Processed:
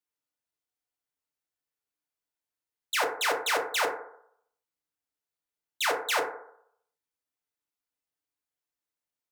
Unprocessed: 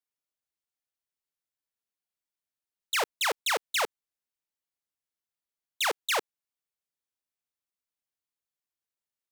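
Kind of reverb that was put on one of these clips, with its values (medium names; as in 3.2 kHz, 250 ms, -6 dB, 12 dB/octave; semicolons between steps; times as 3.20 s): FDN reverb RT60 0.69 s, low-frequency decay 0.7×, high-frequency decay 0.3×, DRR -0.5 dB; trim -2 dB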